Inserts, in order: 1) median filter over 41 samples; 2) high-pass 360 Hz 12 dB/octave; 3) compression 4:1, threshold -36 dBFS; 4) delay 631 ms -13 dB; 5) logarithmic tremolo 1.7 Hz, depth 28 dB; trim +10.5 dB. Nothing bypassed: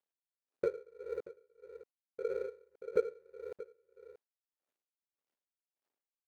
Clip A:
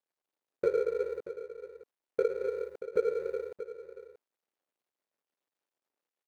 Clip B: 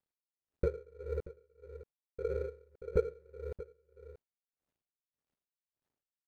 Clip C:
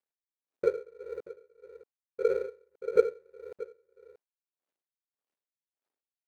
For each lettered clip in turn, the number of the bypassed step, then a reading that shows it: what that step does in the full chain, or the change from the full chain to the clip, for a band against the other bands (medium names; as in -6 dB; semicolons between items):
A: 5, momentary loudness spread change -6 LU; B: 2, 250 Hz band +4.0 dB; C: 3, crest factor change +1.5 dB